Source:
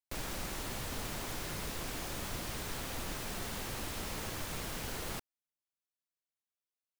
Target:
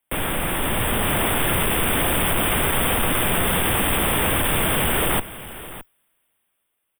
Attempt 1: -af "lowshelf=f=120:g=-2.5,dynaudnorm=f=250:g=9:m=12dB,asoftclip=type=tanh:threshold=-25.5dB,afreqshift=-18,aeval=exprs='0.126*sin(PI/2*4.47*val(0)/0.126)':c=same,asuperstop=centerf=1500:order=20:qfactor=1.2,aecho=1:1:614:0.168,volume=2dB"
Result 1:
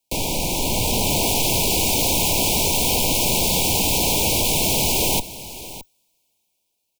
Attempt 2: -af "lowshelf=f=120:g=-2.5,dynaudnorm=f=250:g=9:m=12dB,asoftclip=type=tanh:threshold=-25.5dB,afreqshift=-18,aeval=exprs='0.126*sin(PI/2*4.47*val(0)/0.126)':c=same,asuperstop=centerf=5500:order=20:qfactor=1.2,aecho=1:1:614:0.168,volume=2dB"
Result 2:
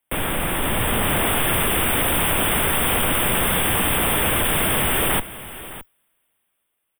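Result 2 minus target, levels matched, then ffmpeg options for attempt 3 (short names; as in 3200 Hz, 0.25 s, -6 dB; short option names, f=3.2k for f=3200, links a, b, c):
soft clip: distortion -6 dB
-af "lowshelf=f=120:g=-2.5,dynaudnorm=f=250:g=9:m=12dB,asoftclip=type=tanh:threshold=-32dB,afreqshift=-18,aeval=exprs='0.126*sin(PI/2*4.47*val(0)/0.126)':c=same,asuperstop=centerf=5500:order=20:qfactor=1.2,aecho=1:1:614:0.168,volume=2dB"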